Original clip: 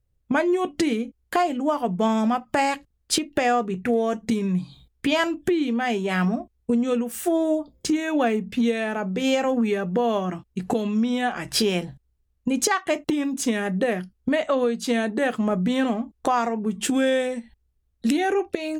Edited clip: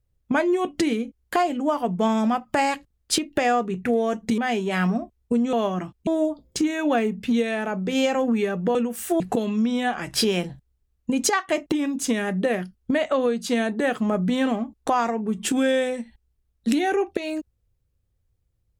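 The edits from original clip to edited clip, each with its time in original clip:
4.38–5.76 s: delete
6.91–7.36 s: swap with 10.04–10.58 s

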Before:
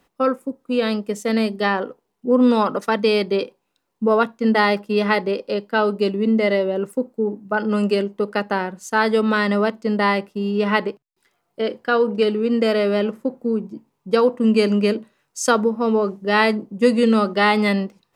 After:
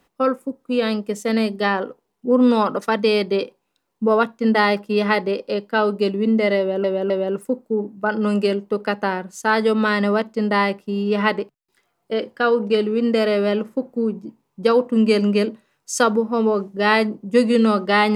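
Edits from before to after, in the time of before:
6.58–6.84 s: loop, 3 plays

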